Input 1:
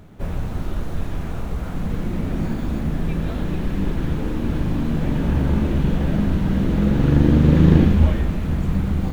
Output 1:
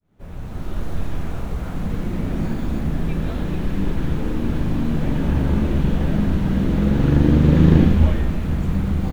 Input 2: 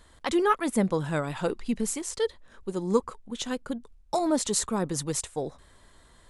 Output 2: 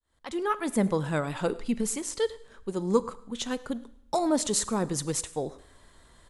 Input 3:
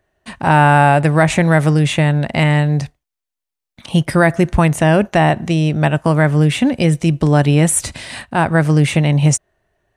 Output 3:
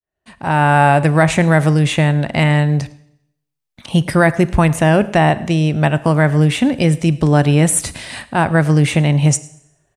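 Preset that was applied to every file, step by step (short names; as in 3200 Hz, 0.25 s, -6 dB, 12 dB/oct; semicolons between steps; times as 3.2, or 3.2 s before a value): opening faded in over 0.86 s; echo 0.106 s -23 dB; Schroeder reverb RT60 0.78 s, combs from 30 ms, DRR 17.5 dB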